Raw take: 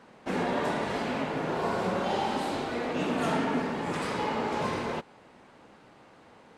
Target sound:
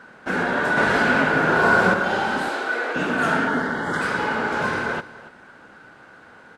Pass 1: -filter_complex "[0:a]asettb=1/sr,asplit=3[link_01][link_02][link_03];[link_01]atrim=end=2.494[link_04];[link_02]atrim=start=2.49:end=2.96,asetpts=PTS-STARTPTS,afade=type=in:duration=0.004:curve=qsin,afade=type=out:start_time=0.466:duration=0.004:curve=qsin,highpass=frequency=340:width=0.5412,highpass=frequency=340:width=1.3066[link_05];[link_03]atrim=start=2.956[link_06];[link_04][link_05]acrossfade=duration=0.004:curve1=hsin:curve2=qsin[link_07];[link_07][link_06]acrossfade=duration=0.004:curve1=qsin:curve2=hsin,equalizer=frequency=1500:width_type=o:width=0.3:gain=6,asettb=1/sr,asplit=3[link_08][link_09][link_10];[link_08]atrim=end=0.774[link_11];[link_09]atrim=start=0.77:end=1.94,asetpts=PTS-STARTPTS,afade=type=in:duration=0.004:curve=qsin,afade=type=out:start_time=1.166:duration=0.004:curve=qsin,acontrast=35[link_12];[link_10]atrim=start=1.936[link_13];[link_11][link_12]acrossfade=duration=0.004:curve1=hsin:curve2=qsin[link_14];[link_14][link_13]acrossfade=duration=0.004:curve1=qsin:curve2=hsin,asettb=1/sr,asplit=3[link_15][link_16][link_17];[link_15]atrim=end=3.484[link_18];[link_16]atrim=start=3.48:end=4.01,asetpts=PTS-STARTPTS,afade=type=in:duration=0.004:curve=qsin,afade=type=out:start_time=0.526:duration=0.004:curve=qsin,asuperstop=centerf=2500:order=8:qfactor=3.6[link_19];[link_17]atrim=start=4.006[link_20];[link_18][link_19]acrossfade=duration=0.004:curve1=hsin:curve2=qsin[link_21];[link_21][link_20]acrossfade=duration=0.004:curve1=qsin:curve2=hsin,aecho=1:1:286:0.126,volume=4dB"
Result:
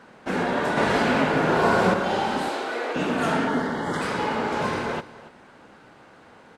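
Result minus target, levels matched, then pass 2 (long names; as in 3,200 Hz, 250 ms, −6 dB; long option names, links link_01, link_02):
2,000 Hz band −5.0 dB
-filter_complex "[0:a]asettb=1/sr,asplit=3[link_01][link_02][link_03];[link_01]atrim=end=2.494[link_04];[link_02]atrim=start=2.49:end=2.96,asetpts=PTS-STARTPTS,afade=type=in:duration=0.004:curve=qsin,afade=type=out:start_time=0.466:duration=0.004:curve=qsin,highpass=frequency=340:width=0.5412,highpass=frequency=340:width=1.3066[link_05];[link_03]atrim=start=2.956[link_06];[link_04][link_05]acrossfade=duration=0.004:curve1=hsin:curve2=qsin[link_07];[link_07][link_06]acrossfade=duration=0.004:curve1=qsin:curve2=hsin,equalizer=frequency=1500:width_type=o:width=0.3:gain=17,asettb=1/sr,asplit=3[link_08][link_09][link_10];[link_08]atrim=end=0.774[link_11];[link_09]atrim=start=0.77:end=1.94,asetpts=PTS-STARTPTS,afade=type=in:duration=0.004:curve=qsin,afade=type=out:start_time=1.166:duration=0.004:curve=qsin,acontrast=35[link_12];[link_10]atrim=start=1.936[link_13];[link_11][link_12]acrossfade=duration=0.004:curve1=hsin:curve2=qsin[link_14];[link_14][link_13]acrossfade=duration=0.004:curve1=qsin:curve2=hsin,asettb=1/sr,asplit=3[link_15][link_16][link_17];[link_15]atrim=end=3.484[link_18];[link_16]atrim=start=3.48:end=4.01,asetpts=PTS-STARTPTS,afade=type=in:duration=0.004:curve=qsin,afade=type=out:start_time=0.526:duration=0.004:curve=qsin,asuperstop=centerf=2500:order=8:qfactor=3.6[link_19];[link_17]atrim=start=4.006[link_20];[link_18][link_19]acrossfade=duration=0.004:curve1=hsin:curve2=qsin[link_21];[link_21][link_20]acrossfade=duration=0.004:curve1=qsin:curve2=hsin,aecho=1:1:286:0.126,volume=4dB"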